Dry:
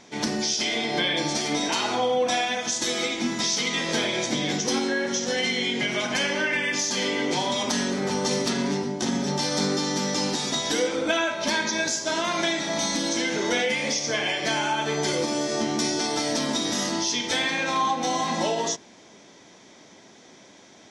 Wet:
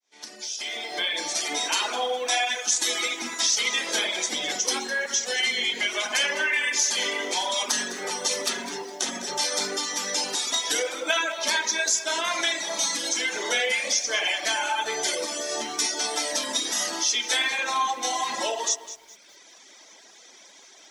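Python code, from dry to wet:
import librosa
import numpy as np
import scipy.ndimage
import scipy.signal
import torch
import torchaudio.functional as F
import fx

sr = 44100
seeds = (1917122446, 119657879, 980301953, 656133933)

p1 = fx.fade_in_head(x, sr, length_s=1.59)
p2 = fx.dynamic_eq(p1, sr, hz=4800.0, q=1.7, threshold_db=-43.0, ratio=4.0, max_db=-5)
p3 = scipy.signal.sosfilt(scipy.signal.butter(2, 330.0, 'highpass', fs=sr, output='sos'), p2)
p4 = fx.tilt_eq(p3, sr, slope=3.0)
p5 = p4 + fx.echo_bbd(p4, sr, ms=76, stages=1024, feedback_pct=55, wet_db=-8.0, dry=0)
p6 = fx.dereverb_blind(p5, sr, rt60_s=1.2)
y = fx.echo_crushed(p6, sr, ms=206, feedback_pct=35, bits=8, wet_db=-14.0)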